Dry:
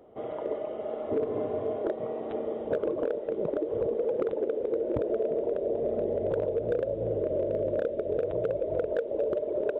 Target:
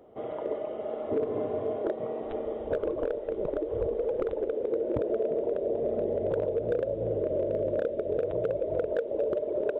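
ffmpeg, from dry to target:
ffmpeg -i in.wav -filter_complex "[0:a]asplit=3[link_01][link_02][link_03];[link_01]afade=type=out:start_time=2.22:duration=0.02[link_04];[link_02]asubboost=boost=11:cutoff=55,afade=type=in:start_time=2.22:duration=0.02,afade=type=out:start_time=4.53:duration=0.02[link_05];[link_03]afade=type=in:start_time=4.53:duration=0.02[link_06];[link_04][link_05][link_06]amix=inputs=3:normalize=0" out.wav

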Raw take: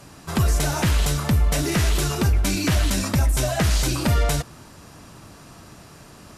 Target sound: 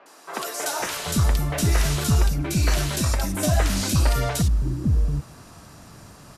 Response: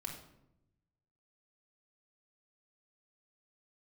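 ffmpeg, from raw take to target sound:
-filter_complex "[0:a]asettb=1/sr,asplit=3[link_01][link_02][link_03];[link_01]atrim=end=2.034[link_04];[link_02]atrim=start=2.03:end=2.62,asetpts=PTS-STARTPTS,afade=type=in:duration=0.004:curve=qsin,afade=type=out:start_time=0.586:duration=0.004:curve=qsin,acompressor=threshold=-20dB:ratio=4[link_05];[link_03]atrim=start=2.616[link_06];[link_04][link_05]acrossfade=duration=0.004:curve1=hsin:curve2=qsin[link_07];[link_07][link_06]acrossfade=duration=0.004:curve1=qsin:curve2=hsin,acrossover=split=350|2700[link_08][link_09][link_10];[link_10]adelay=60[link_11];[link_08]adelay=790[link_12];[link_12][link_09][link_11]amix=inputs=3:normalize=0"

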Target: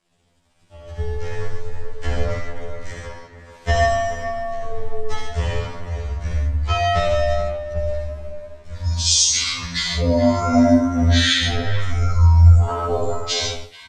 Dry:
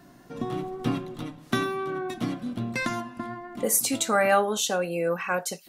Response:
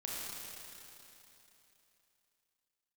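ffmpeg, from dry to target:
-filter_complex "[0:a]highpass=190,bass=frequency=250:gain=7,treble=frequency=4000:gain=4,dynaudnorm=framelen=100:gausssize=7:maxgain=10dB,atempo=0.71,aeval=exprs='sgn(val(0))*max(abs(val(0))-0.00376,0)':channel_layout=same,afreqshift=-360,asplit=2[link_01][link_02];[link_02]adelay=250,highpass=300,lowpass=3400,asoftclip=type=hard:threshold=-9dB,volume=-8dB[link_03];[link_01][link_03]amix=inputs=2:normalize=0[link_04];[1:a]atrim=start_sample=2205,atrim=end_sample=3969[link_05];[link_04][link_05]afir=irnorm=-1:irlink=0,asetrate=25442,aresample=44100,afftfilt=real='re*2*eq(mod(b,4),0)':imag='im*2*eq(mod(b,4),0)':win_size=2048:overlap=0.75,volume=4dB"

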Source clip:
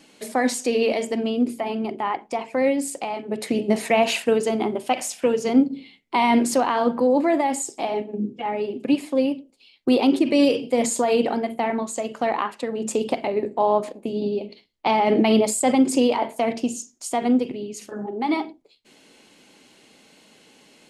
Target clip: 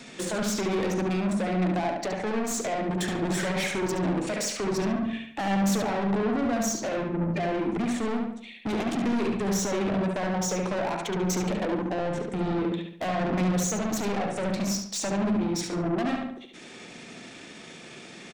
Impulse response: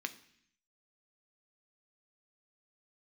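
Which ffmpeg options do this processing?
-filter_complex "[0:a]bandreject=frequency=50:width_type=h:width=6,bandreject=frequency=100:width_type=h:width=6,bandreject=frequency=150:width_type=h:width=6,bandreject=frequency=200:width_type=h:width=6,bandreject=frequency=250:width_type=h:width=6,asetrate=32097,aresample=44100,atempo=1.37395,alimiter=limit=-14dB:level=0:latency=1,acrossover=split=220[link_01][link_02];[link_02]acompressor=threshold=-29dB:ratio=5[link_03];[link_01][link_03]amix=inputs=2:normalize=0,aeval=exprs='(tanh(56.2*val(0)+0.05)-tanh(0.05))/56.2':channel_layout=same,asetrate=50274,aresample=44100,asplit=2[link_04][link_05];[link_05]adelay=71,lowpass=frequency=3800:poles=1,volume=-3dB,asplit=2[link_06][link_07];[link_07]adelay=71,lowpass=frequency=3800:poles=1,volume=0.45,asplit=2[link_08][link_09];[link_09]adelay=71,lowpass=frequency=3800:poles=1,volume=0.45,asplit=2[link_10][link_11];[link_11]adelay=71,lowpass=frequency=3800:poles=1,volume=0.45,asplit=2[link_12][link_13];[link_13]adelay=71,lowpass=frequency=3800:poles=1,volume=0.45,asplit=2[link_14][link_15];[link_15]adelay=71,lowpass=frequency=3800:poles=1,volume=0.45[link_16];[link_06][link_08][link_10][link_12][link_14][link_16]amix=inputs=6:normalize=0[link_17];[link_04][link_17]amix=inputs=2:normalize=0,volume=8dB"

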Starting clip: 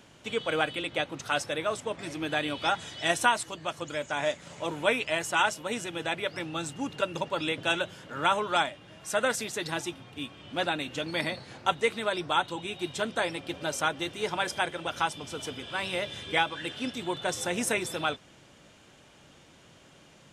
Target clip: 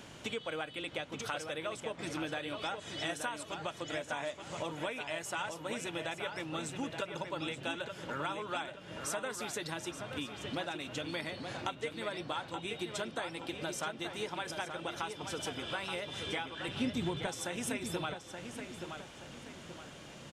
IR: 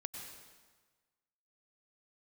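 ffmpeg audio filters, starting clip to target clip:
-filter_complex "[0:a]acompressor=threshold=-41dB:ratio=6,asettb=1/sr,asplit=3[link_01][link_02][link_03];[link_01]atrim=end=16.684[link_04];[link_02]atrim=start=16.68:end=17.27,asetpts=PTS-STARTPTS,afade=type=in:duration=0.004:curve=qsin,afade=type=out:start_time=0.586:duration=0.004:curve=qsin,bass=frequency=250:gain=13,treble=frequency=4000:gain=-1[link_05];[link_03]atrim=start=17.266[link_06];[link_04][link_05]acrossfade=duration=0.004:curve1=hsin:curve2=qsin[link_07];[link_07][link_06]acrossfade=duration=0.004:curve1=qsin:curve2=hsin,asplit=2[link_08][link_09];[link_09]adelay=876,lowpass=frequency=4000:poles=1,volume=-6.5dB,asplit=2[link_10][link_11];[link_11]adelay=876,lowpass=frequency=4000:poles=1,volume=0.4,asplit=2[link_12][link_13];[link_13]adelay=876,lowpass=frequency=4000:poles=1,volume=0.4,asplit=2[link_14][link_15];[link_15]adelay=876,lowpass=frequency=4000:poles=1,volume=0.4,asplit=2[link_16][link_17];[link_17]adelay=876,lowpass=frequency=4000:poles=1,volume=0.4[link_18];[link_10][link_12][link_14][link_16][link_18]amix=inputs=5:normalize=0[link_19];[link_08][link_19]amix=inputs=2:normalize=0,volume=4.5dB"

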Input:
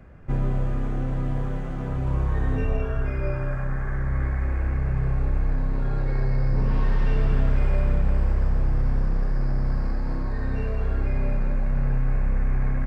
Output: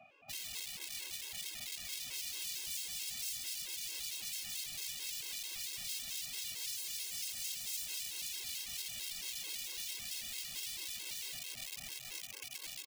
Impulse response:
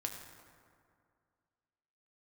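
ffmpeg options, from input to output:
-filter_complex "[0:a]highpass=frequency=94:width=0.5412,highpass=frequency=94:width=1.3066,dynaudnorm=framelen=310:gausssize=17:maxgain=6dB,asplit=3[link_01][link_02][link_03];[link_01]bandpass=frequency=730:width_type=q:width=8,volume=0dB[link_04];[link_02]bandpass=frequency=1090:width_type=q:width=8,volume=-6dB[link_05];[link_03]bandpass=frequency=2440:width_type=q:width=8,volume=-9dB[link_06];[link_04][link_05][link_06]amix=inputs=3:normalize=0,asplit=2[link_07][link_08];[link_08]adelay=154,lowpass=frequency=800:poles=1,volume=-13dB,asplit=2[link_09][link_10];[link_10]adelay=154,lowpass=frequency=800:poles=1,volume=0.28,asplit=2[link_11][link_12];[link_12]adelay=154,lowpass=frequency=800:poles=1,volume=0.28[link_13];[link_07][link_09][link_11][link_13]amix=inputs=4:normalize=0,aeval=exprs='(mod(178*val(0)+1,2)-1)/178':channel_layout=same,acrossover=split=1800[link_14][link_15];[link_14]aeval=exprs='val(0)*(1-0.5/2+0.5/2*cos(2*PI*3.8*n/s))':channel_layout=same[link_16];[link_15]aeval=exprs='val(0)*(1-0.5/2-0.5/2*cos(2*PI*3.8*n/s))':channel_layout=same[link_17];[link_16][link_17]amix=inputs=2:normalize=0,alimiter=level_in=20.5dB:limit=-24dB:level=0:latency=1:release=323,volume=-20.5dB,aexciter=amount=7.4:drive=7.7:freq=2100,acrossover=split=190[link_18][link_19];[link_19]acompressor=threshold=-60dB:ratio=1.5[link_20];[link_18][link_20]amix=inputs=2:normalize=0,afftfilt=real='re*gt(sin(2*PI*4.5*pts/sr)*(1-2*mod(floor(b*sr/1024/280),2)),0)':imag='im*gt(sin(2*PI*4.5*pts/sr)*(1-2*mod(floor(b*sr/1024/280),2)),0)':win_size=1024:overlap=0.75,volume=7dB"

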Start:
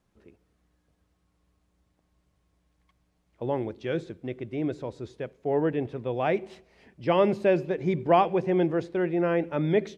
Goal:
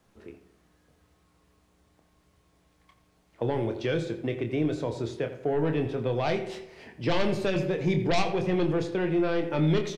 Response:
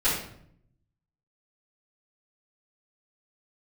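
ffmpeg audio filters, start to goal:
-filter_complex "[0:a]lowshelf=frequency=160:gain=-5.5,bandreject=frequency=189.6:width_type=h:width=4,bandreject=frequency=379.2:width_type=h:width=4,bandreject=frequency=568.8:width_type=h:width=4,bandreject=frequency=758.4:width_type=h:width=4,bandreject=frequency=948:width_type=h:width=4,bandreject=frequency=1137.6:width_type=h:width=4,bandreject=frequency=1327.2:width_type=h:width=4,bandreject=frequency=1516.8:width_type=h:width=4,bandreject=frequency=1706.4:width_type=h:width=4,bandreject=frequency=1896:width_type=h:width=4,bandreject=frequency=2085.6:width_type=h:width=4,bandreject=frequency=2275.2:width_type=h:width=4,bandreject=frequency=2464.8:width_type=h:width=4,bandreject=frequency=2654.4:width_type=h:width=4,bandreject=frequency=2844:width_type=h:width=4,bandreject=frequency=3033.6:width_type=h:width=4,bandreject=frequency=3223.2:width_type=h:width=4,bandreject=frequency=3412.8:width_type=h:width=4,bandreject=frequency=3602.4:width_type=h:width=4,bandreject=frequency=3792:width_type=h:width=4,bandreject=frequency=3981.6:width_type=h:width=4,bandreject=frequency=4171.2:width_type=h:width=4,bandreject=frequency=4360.8:width_type=h:width=4,bandreject=frequency=4550.4:width_type=h:width=4,bandreject=frequency=4740:width_type=h:width=4,bandreject=frequency=4929.6:width_type=h:width=4,bandreject=frequency=5119.2:width_type=h:width=4,bandreject=frequency=5308.8:width_type=h:width=4,bandreject=frequency=5498.4:width_type=h:width=4,bandreject=frequency=5688:width_type=h:width=4,bandreject=frequency=5877.6:width_type=h:width=4,bandreject=frequency=6067.2:width_type=h:width=4,bandreject=frequency=6256.8:width_type=h:width=4,bandreject=frequency=6446.4:width_type=h:width=4,bandreject=frequency=6636:width_type=h:width=4,bandreject=frequency=6825.6:width_type=h:width=4,bandreject=frequency=7015.2:width_type=h:width=4,bandreject=frequency=7204.8:width_type=h:width=4,bandreject=frequency=7394.4:width_type=h:width=4,aeval=exprs='0.335*(cos(1*acos(clip(val(0)/0.335,-1,1)))-cos(1*PI/2))+0.106*(cos(5*acos(clip(val(0)/0.335,-1,1)))-cos(5*PI/2))':channel_layout=same,asplit=2[link_01][link_02];[link_02]adelay=26,volume=-7.5dB[link_03];[link_01][link_03]amix=inputs=2:normalize=0,asplit=2[link_04][link_05];[link_05]adelay=85,lowpass=frequency=4400:poles=1,volume=-14dB,asplit=2[link_06][link_07];[link_07]adelay=85,lowpass=frequency=4400:poles=1,volume=0.32,asplit=2[link_08][link_09];[link_09]adelay=85,lowpass=frequency=4400:poles=1,volume=0.32[link_10];[link_04][link_06][link_08][link_10]amix=inputs=4:normalize=0,acrossover=split=180|3000[link_11][link_12][link_13];[link_12]acompressor=threshold=-28dB:ratio=4[link_14];[link_11][link_14][link_13]amix=inputs=3:normalize=0,asplit=2[link_15][link_16];[1:a]atrim=start_sample=2205[link_17];[link_16][link_17]afir=irnorm=-1:irlink=0,volume=-26dB[link_18];[link_15][link_18]amix=inputs=2:normalize=0"

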